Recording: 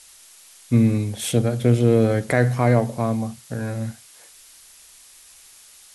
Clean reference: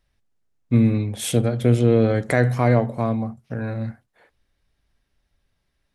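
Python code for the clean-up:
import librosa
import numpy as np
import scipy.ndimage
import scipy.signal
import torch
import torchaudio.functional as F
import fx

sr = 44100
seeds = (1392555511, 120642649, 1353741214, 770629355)

y = fx.noise_reduce(x, sr, print_start_s=4.65, print_end_s=5.15, reduce_db=22.0)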